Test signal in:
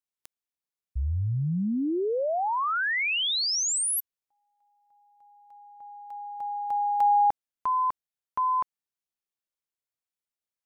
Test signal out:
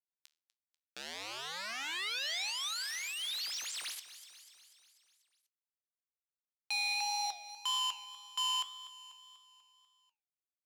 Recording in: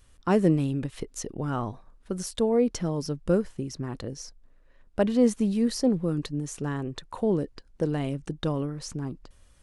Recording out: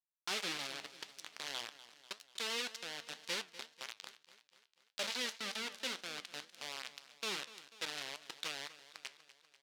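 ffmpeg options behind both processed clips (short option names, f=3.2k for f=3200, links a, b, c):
-filter_complex "[0:a]aeval=exprs='val(0)+0.5*0.015*sgn(val(0))':c=same,acrusher=bits=3:mix=0:aa=0.000001,bandpass=f=4k:t=q:w=1.2:csg=0,asplit=2[a][b];[b]aecho=0:1:245|490|735|980|1225|1470:0.158|0.0919|0.0533|0.0309|0.0179|0.0104[c];[a][c]amix=inputs=2:normalize=0,flanger=delay=8:depth=6.1:regen=77:speed=1.8:shape=triangular,adynamicequalizer=threshold=0.00501:dfrequency=3900:dqfactor=0.7:tfrequency=3900:tqfactor=0.7:attack=5:release=100:ratio=0.375:range=2.5:mode=cutabove:tftype=highshelf"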